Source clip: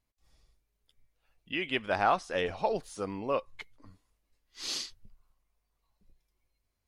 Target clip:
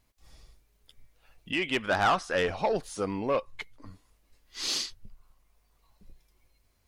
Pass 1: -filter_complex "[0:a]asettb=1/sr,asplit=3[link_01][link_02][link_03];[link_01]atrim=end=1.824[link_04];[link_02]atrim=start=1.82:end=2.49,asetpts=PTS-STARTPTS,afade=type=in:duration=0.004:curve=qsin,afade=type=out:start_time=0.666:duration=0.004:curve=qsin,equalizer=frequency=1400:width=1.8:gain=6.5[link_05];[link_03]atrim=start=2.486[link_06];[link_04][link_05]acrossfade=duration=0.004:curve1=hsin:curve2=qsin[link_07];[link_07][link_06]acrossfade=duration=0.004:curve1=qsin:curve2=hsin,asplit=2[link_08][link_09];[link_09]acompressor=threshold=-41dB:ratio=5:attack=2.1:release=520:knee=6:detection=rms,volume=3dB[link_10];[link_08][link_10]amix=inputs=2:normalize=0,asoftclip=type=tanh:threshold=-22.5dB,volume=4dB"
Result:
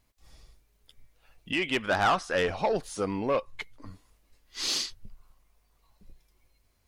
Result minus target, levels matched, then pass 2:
downward compressor: peak gain reduction −6.5 dB
-filter_complex "[0:a]asettb=1/sr,asplit=3[link_01][link_02][link_03];[link_01]atrim=end=1.824[link_04];[link_02]atrim=start=1.82:end=2.49,asetpts=PTS-STARTPTS,afade=type=in:duration=0.004:curve=qsin,afade=type=out:start_time=0.666:duration=0.004:curve=qsin,equalizer=frequency=1400:width=1.8:gain=6.5[link_05];[link_03]atrim=start=2.486[link_06];[link_04][link_05]acrossfade=duration=0.004:curve1=hsin:curve2=qsin[link_07];[link_07][link_06]acrossfade=duration=0.004:curve1=qsin:curve2=hsin,asplit=2[link_08][link_09];[link_09]acompressor=threshold=-49dB:ratio=5:attack=2.1:release=520:knee=6:detection=rms,volume=3dB[link_10];[link_08][link_10]amix=inputs=2:normalize=0,asoftclip=type=tanh:threshold=-22.5dB,volume=4dB"

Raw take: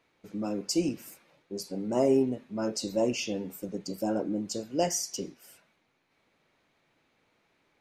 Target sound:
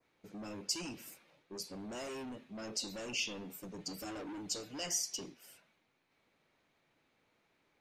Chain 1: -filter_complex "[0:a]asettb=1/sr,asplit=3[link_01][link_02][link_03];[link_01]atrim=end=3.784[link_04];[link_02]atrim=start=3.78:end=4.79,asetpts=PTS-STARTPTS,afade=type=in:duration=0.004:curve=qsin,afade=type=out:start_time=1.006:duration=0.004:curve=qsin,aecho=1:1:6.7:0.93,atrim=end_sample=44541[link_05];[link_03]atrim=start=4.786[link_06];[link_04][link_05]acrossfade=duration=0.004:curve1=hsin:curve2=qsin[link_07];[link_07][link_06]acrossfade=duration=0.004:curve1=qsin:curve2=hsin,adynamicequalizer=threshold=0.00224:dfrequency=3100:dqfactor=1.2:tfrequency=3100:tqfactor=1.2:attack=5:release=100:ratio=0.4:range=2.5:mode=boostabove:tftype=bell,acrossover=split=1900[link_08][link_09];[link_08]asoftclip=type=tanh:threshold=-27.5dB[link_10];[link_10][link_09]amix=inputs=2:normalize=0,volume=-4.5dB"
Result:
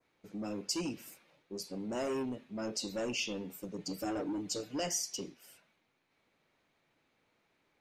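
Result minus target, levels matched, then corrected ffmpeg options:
soft clipping: distortion −5 dB
-filter_complex "[0:a]asettb=1/sr,asplit=3[link_01][link_02][link_03];[link_01]atrim=end=3.784[link_04];[link_02]atrim=start=3.78:end=4.79,asetpts=PTS-STARTPTS,afade=type=in:duration=0.004:curve=qsin,afade=type=out:start_time=1.006:duration=0.004:curve=qsin,aecho=1:1:6.7:0.93,atrim=end_sample=44541[link_05];[link_03]atrim=start=4.786[link_06];[link_04][link_05]acrossfade=duration=0.004:curve1=hsin:curve2=qsin[link_07];[link_07][link_06]acrossfade=duration=0.004:curve1=qsin:curve2=hsin,adynamicequalizer=threshold=0.00224:dfrequency=3100:dqfactor=1.2:tfrequency=3100:tqfactor=1.2:attack=5:release=100:ratio=0.4:range=2.5:mode=boostabove:tftype=bell,acrossover=split=1900[link_08][link_09];[link_08]asoftclip=type=tanh:threshold=-38dB[link_10];[link_10][link_09]amix=inputs=2:normalize=0,volume=-4.5dB"

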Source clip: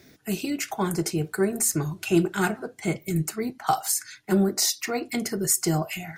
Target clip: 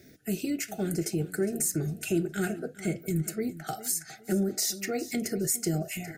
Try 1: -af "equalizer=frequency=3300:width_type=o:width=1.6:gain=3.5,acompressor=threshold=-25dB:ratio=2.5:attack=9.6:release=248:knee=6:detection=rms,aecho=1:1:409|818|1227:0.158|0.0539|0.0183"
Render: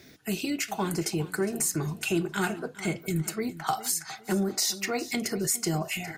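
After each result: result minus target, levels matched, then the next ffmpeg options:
1,000 Hz band +7.0 dB; 4,000 Hz band +4.5 dB
-af "equalizer=frequency=3300:width_type=o:width=1.6:gain=3.5,acompressor=threshold=-25dB:ratio=2.5:attack=9.6:release=248:knee=6:detection=rms,asuperstop=centerf=1000:order=4:qfactor=1.3,aecho=1:1:409|818|1227:0.158|0.0539|0.0183"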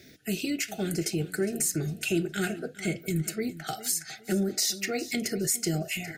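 4,000 Hz band +4.5 dB
-af "equalizer=frequency=3300:width_type=o:width=1.6:gain=-6,acompressor=threshold=-25dB:ratio=2.5:attack=9.6:release=248:knee=6:detection=rms,asuperstop=centerf=1000:order=4:qfactor=1.3,aecho=1:1:409|818|1227:0.158|0.0539|0.0183"

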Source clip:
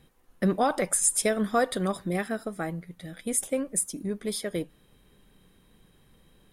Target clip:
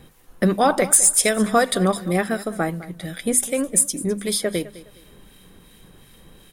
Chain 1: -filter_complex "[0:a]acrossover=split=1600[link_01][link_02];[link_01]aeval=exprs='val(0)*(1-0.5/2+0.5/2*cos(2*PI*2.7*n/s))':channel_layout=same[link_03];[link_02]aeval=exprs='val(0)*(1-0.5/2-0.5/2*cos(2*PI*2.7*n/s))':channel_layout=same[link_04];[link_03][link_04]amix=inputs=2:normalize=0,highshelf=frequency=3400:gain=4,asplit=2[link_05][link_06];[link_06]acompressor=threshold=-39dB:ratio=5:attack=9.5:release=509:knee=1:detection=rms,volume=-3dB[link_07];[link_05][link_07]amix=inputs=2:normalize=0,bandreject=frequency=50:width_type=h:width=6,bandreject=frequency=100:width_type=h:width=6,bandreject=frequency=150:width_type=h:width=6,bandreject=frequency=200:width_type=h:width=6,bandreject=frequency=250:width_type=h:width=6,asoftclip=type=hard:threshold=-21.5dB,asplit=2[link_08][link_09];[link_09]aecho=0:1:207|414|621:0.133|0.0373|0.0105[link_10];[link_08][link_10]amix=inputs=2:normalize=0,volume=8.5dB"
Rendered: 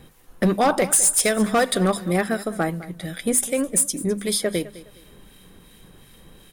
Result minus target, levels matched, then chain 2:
hard clipping: distortion +10 dB
-filter_complex "[0:a]acrossover=split=1600[link_01][link_02];[link_01]aeval=exprs='val(0)*(1-0.5/2+0.5/2*cos(2*PI*2.7*n/s))':channel_layout=same[link_03];[link_02]aeval=exprs='val(0)*(1-0.5/2-0.5/2*cos(2*PI*2.7*n/s))':channel_layout=same[link_04];[link_03][link_04]amix=inputs=2:normalize=0,highshelf=frequency=3400:gain=4,asplit=2[link_05][link_06];[link_06]acompressor=threshold=-39dB:ratio=5:attack=9.5:release=509:knee=1:detection=rms,volume=-3dB[link_07];[link_05][link_07]amix=inputs=2:normalize=0,bandreject=frequency=50:width_type=h:width=6,bandreject=frequency=100:width_type=h:width=6,bandreject=frequency=150:width_type=h:width=6,bandreject=frequency=200:width_type=h:width=6,bandreject=frequency=250:width_type=h:width=6,asoftclip=type=hard:threshold=-15.5dB,asplit=2[link_08][link_09];[link_09]aecho=0:1:207|414|621:0.133|0.0373|0.0105[link_10];[link_08][link_10]amix=inputs=2:normalize=0,volume=8.5dB"

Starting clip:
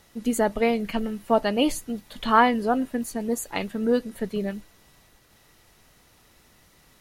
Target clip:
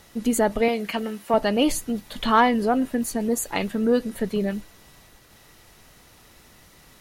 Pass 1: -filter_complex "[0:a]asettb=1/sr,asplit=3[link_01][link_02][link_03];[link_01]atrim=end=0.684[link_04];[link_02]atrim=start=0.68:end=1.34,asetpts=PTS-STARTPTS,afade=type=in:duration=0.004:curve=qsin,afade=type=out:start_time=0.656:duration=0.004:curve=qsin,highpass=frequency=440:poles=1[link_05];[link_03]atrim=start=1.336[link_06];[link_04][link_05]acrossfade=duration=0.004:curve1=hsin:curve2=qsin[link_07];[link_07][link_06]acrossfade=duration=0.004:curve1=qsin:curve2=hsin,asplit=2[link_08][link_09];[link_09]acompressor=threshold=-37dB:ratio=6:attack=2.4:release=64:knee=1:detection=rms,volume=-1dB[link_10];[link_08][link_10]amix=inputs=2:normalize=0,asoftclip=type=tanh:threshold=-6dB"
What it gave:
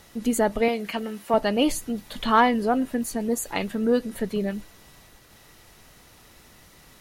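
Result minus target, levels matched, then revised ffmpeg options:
downward compressor: peak gain reduction +8 dB
-filter_complex "[0:a]asettb=1/sr,asplit=3[link_01][link_02][link_03];[link_01]atrim=end=0.684[link_04];[link_02]atrim=start=0.68:end=1.34,asetpts=PTS-STARTPTS,afade=type=in:duration=0.004:curve=qsin,afade=type=out:start_time=0.656:duration=0.004:curve=qsin,highpass=frequency=440:poles=1[link_05];[link_03]atrim=start=1.336[link_06];[link_04][link_05]acrossfade=duration=0.004:curve1=hsin:curve2=qsin[link_07];[link_07][link_06]acrossfade=duration=0.004:curve1=qsin:curve2=hsin,asplit=2[link_08][link_09];[link_09]acompressor=threshold=-27.5dB:ratio=6:attack=2.4:release=64:knee=1:detection=rms,volume=-1dB[link_10];[link_08][link_10]amix=inputs=2:normalize=0,asoftclip=type=tanh:threshold=-6dB"

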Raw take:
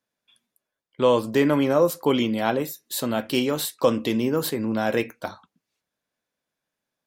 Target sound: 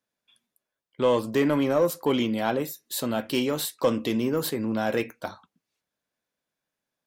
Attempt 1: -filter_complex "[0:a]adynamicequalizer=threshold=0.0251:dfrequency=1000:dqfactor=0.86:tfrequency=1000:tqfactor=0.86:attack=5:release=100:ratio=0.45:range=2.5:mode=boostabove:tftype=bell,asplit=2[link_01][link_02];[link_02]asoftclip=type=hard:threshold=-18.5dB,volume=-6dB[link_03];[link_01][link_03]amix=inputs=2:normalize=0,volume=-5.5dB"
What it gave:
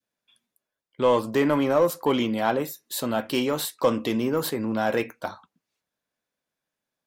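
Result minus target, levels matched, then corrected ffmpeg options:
1,000 Hz band +2.5 dB
-filter_complex "[0:a]asplit=2[link_01][link_02];[link_02]asoftclip=type=hard:threshold=-18.5dB,volume=-6dB[link_03];[link_01][link_03]amix=inputs=2:normalize=0,volume=-5.5dB"

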